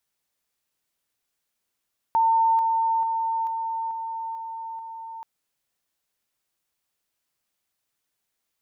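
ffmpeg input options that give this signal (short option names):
-f lavfi -i "aevalsrc='pow(10,(-16.5-3*floor(t/0.44))/20)*sin(2*PI*904*t)':d=3.08:s=44100"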